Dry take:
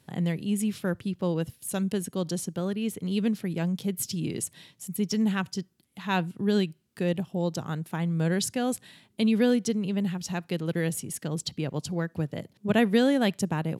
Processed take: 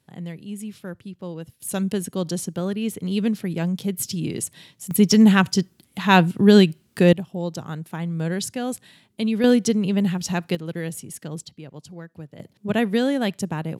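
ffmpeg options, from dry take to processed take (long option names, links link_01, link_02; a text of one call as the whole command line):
ffmpeg -i in.wav -af "asetnsamples=nb_out_samples=441:pad=0,asendcmd='1.6 volume volume 4dB;4.91 volume volume 12dB;7.13 volume volume 0.5dB;9.44 volume volume 7dB;10.55 volume volume -1.5dB;11.45 volume volume -9dB;12.4 volume volume 1dB',volume=-6dB" out.wav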